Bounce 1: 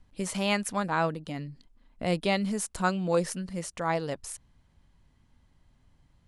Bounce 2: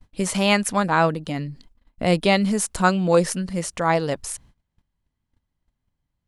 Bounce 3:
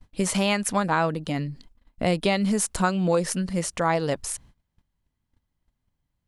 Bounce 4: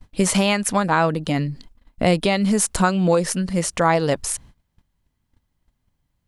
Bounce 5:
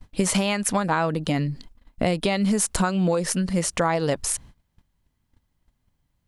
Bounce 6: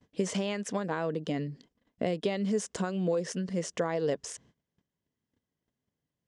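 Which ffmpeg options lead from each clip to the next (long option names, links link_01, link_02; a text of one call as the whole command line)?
ffmpeg -i in.wav -af "agate=range=-23dB:threshold=-56dB:ratio=16:detection=peak,volume=8.5dB" out.wav
ffmpeg -i in.wav -af "acompressor=threshold=-18dB:ratio=6" out.wav
ffmpeg -i in.wav -af "alimiter=limit=-12dB:level=0:latency=1:release=482,volume=6dB" out.wav
ffmpeg -i in.wav -af "acompressor=threshold=-18dB:ratio=6" out.wav
ffmpeg -i in.wav -af "highpass=160,equalizer=frequency=440:width_type=q:width=4:gain=7,equalizer=frequency=870:width_type=q:width=4:gain=-7,equalizer=frequency=1300:width_type=q:width=4:gain=-7,equalizer=frequency=2400:width_type=q:width=4:gain=-6,equalizer=frequency=4200:width_type=q:width=4:gain=-8,lowpass=frequency=6800:width=0.5412,lowpass=frequency=6800:width=1.3066,volume=-7.5dB" out.wav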